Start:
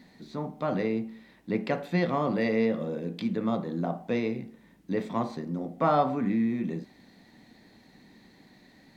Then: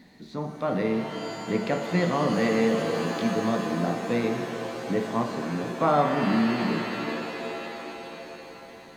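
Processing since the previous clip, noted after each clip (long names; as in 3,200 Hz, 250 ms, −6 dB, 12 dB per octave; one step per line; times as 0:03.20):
reverb with rising layers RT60 3.8 s, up +7 semitones, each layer −2 dB, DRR 5.5 dB
level +1.5 dB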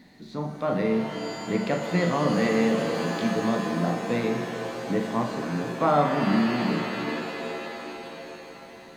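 flutter between parallel walls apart 7 metres, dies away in 0.25 s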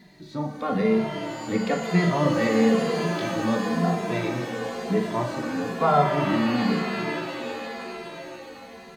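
barber-pole flanger 2.5 ms −1 Hz
level +4.5 dB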